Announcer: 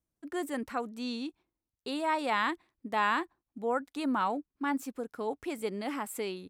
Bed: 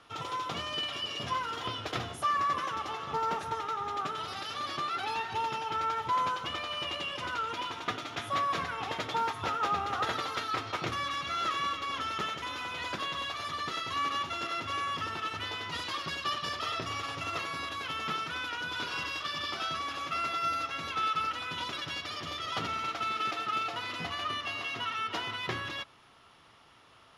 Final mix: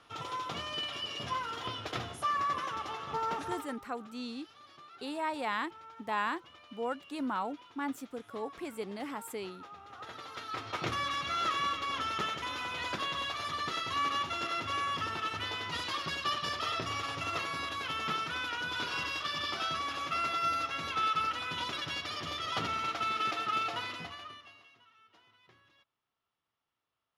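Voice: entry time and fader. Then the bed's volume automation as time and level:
3.15 s, -4.5 dB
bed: 3.50 s -2.5 dB
3.84 s -20 dB
9.75 s -20 dB
10.88 s 0 dB
23.81 s 0 dB
24.86 s -29 dB

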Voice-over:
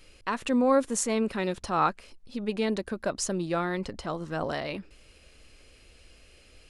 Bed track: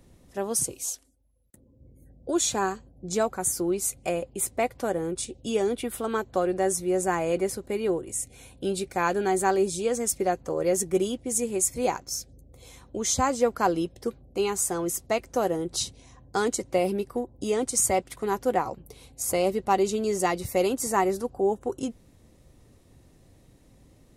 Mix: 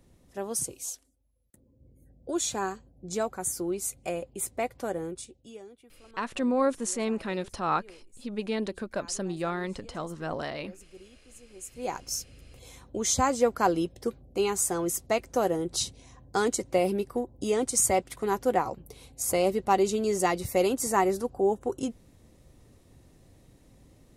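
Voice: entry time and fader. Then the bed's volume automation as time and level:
5.90 s, -2.5 dB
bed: 5.04 s -4.5 dB
5.79 s -26 dB
11.46 s -26 dB
12.02 s -0.5 dB

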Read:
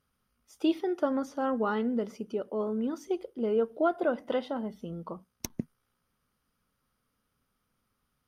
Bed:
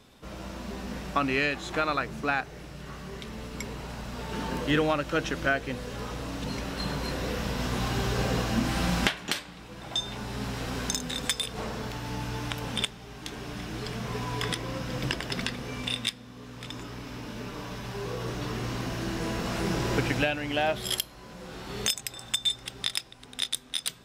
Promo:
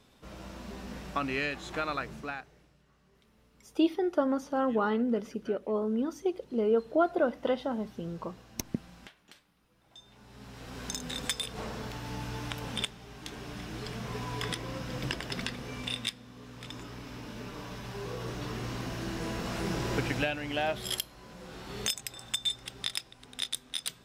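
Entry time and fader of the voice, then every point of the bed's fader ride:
3.15 s, +1.0 dB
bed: 2.12 s -5.5 dB
2.88 s -26 dB
9.83 s -26 dB
11.09 s -4 dB

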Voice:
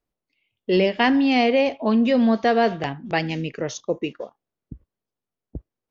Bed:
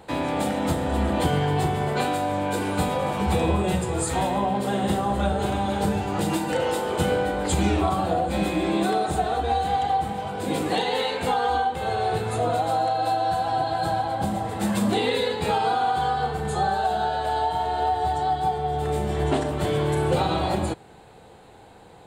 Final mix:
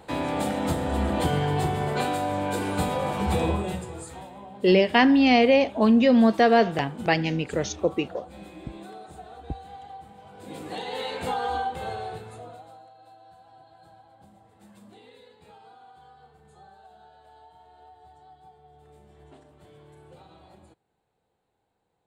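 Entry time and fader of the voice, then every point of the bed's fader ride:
3.95 s, +0.5 dB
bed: 3.46 s -2 dB
4.31 s -19.5 dB
10.12 s -19.5 dB
11.16 s -5 dB
11.81 s -5 dB
12.91 s -28.5 dB

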